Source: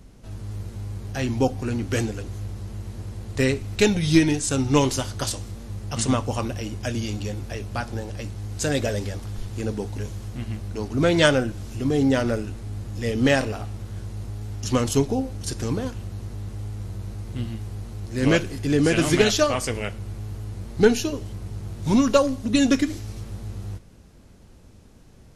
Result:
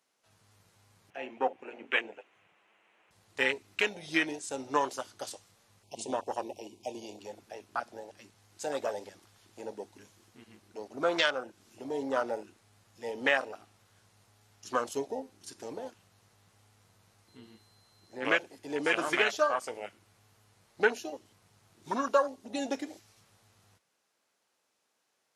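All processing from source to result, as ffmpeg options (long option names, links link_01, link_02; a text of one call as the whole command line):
ffmpeg -i in.wav -filter_complex "[0:a]asettb=1/sr,asplit=3[link_01][link_02][link_03];[link_01]atrim=end=1.104[link_04];[link_02]atrim=start=1.1:end=3.11,asetpts=PTS-STARTPTS,afade=type=in:duration=0.004:curve=qsin,afade=type=out:start_time=2.006:duration=0.004:curve=qsin,highpass=210,lowpass=7800,highshelf=frequency=3500:width_type=q:width=3:gain=-10,bandreject=frequency=60:width_type=h:width=6,bandreject=frequency=120:width_type=h:width=6,bandreject=frequency=180:width_type=h:width=6,bandreject=frequency=240:width_type=h:width=6,bandreject=frequency=300:width_type=h:width=6,bandreject=frequency=360:width_type=h:width=6,bandreject=frequency=420:width_type=h:width=6,bandreject=frequency=480:width_type=h:width=6,bandreject=frequency=540:width_type=h:width=6[link_05];[link_03]atrim=start=3.106[link_06];[link_04][link_05]acrossfade=duration=0.004:curve1=hsin:curve2=qsin[link_07];[link_07][link_06]acrossfade=duration=0.004:curve1=qsin:curve2=hsin,asettb=1/sr,asplit=3[link_08][link_09][link_10];[link_08]atrim=end=5.834[link_11];[link_09]atrim=start=5.83:end=7.19,asetpts=PTS-STARTPTS,afade=type=in:duration=0.004:curve=qsin,afade=type=out:start_time=1.356:duration=0.004:curve=qsin,asuperstop=centerf=1500:order=12:qfactor=1.2,equalizer=frequency=370:width=5.4:gain=7.5[link_12];[link_10]atrim=start=7.186[link_13];[link_11][link_12]acrossfade=duration=0.004:curve1=hsin:curve2=qsin[link_14];[link_14][link_13]acrossfade=duration=0.004:curve1=qsin:curve2=hsin,asettb=1/sr,asplit=3[link_15][link_16][link_17];[link_15]atrim=end=17.284[link_18];[link_16]atrim=start=17.28:end=18.25,asetpts=PTS-STARTPTS,afade=type=in:duration=0.004:curve=qsin,afade=type=out:start_time=0.966:duration=0.004:curve=qsin,acrossover=split=2600[link_19][link_20];[link_20]acompressor=threshold=-47dB:ratio=4:attack=1:release=60[link_21];[link_19][link_21]amix=inputs=2:normalize=0,bandreject=frequency=2500:width=17,aeval=exprs='val(0)+0.00251*sin(2*PI*4100*n/s)':channel_layout=same[link_22];[link_17]atrim=start=18.246[link_23];[link_18][link_22]acrossfade=duration=0.004:curve1=hsin:curve2=qsin[link_24];[link_24][link_23]acrossfade=duration=0.004:curve1=qsin:curve2=hsin,afwtdn=0.0501,highpass=840,alimiter=limit=-15.5dB:level=0:latency=1:release=438,volume=2dB" out.wav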